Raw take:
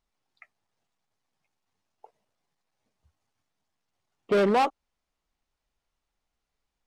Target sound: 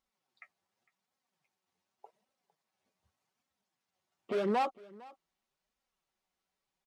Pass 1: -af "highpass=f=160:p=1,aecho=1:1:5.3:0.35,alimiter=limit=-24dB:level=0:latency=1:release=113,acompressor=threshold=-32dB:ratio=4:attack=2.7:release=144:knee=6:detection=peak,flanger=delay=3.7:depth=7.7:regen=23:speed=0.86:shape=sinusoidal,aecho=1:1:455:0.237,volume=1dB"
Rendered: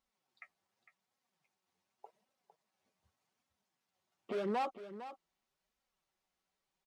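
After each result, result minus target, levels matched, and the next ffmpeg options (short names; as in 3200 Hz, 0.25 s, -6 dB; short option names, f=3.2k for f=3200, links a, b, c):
echo-to-direct +9.5 dB; compressor: peak gain reduction +5.5 dB
-af "highpass=f=160:p=1,aecho=1:1:5.3:0.35,alimiter=limit=-24dB:level=0:latency=1:release=113,acompressor=threshold=-32dB:ratio=4:attack=2.7:release=144:knee=6:detection=peak,flanger=delay=3.7:depth=7.7:regen=23:speed=0.86:shape=sinusoidal,aecho=1:1:455:0.0794,volume=1dB"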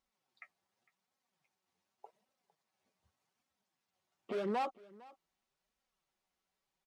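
compressor: peak gain reduction +5.5 dB
-af "highpass=f=160:p=1,aecho=1:1:5.3:0.35,alimiter=limit=-24dB:level=0:latency=1:release=113,flanger=delay=3.7:depth=7.7:regen=23:speed=0.86:shape=sinusoidal,aecho=1:1:455:0.0794,volume=1dB"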